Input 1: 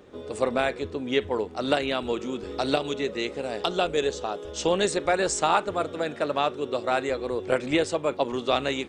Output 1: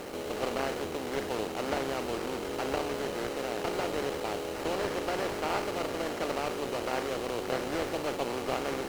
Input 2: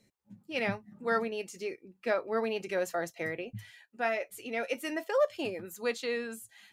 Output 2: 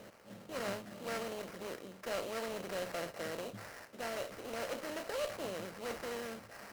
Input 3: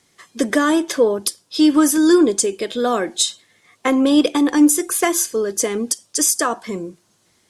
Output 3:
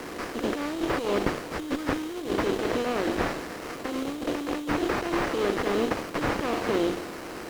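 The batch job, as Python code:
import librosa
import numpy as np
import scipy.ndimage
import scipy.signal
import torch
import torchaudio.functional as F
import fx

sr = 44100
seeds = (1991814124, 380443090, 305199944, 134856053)

y = fx.bin_compress(x, sr, power=0.4)
y = fx.high_shelf(y, sr, hz=9600.0, db=-11.0)
y = fx.over_compress(y, sr, threshold_db=-14.0, ratio=-0.5)
y = fx.transient(y, sr, attack_db=-1, sustain_db=3)
y = fx.sample_hold(y, sr, seeds[0], rate_hz=3500.0, jitter_pct=20)
y = fx.cheby_harmonics(y, sr, harmonics=(3, 8), levels_db=(-16, -29), full_scale_db=1.0)
y = fx.slew_limit(y, sr, full_power_hz=270.0)
y = F.gain(torch.from_numpy(y), -7.5).numpy()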